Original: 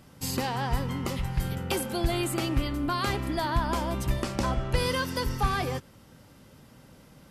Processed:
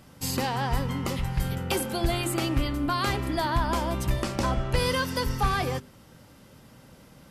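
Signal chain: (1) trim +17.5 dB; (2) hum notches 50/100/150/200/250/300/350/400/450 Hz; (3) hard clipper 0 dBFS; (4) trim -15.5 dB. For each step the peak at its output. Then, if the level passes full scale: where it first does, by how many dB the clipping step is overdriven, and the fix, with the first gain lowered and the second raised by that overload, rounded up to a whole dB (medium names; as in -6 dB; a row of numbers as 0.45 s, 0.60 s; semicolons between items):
+4.5 dBFS, +4.0 dBFS, 0.0 dBFS, -15.5 dBFS; step 1, 4.0 dB; step 1 +13.5 dB, step 4 -11.5 dB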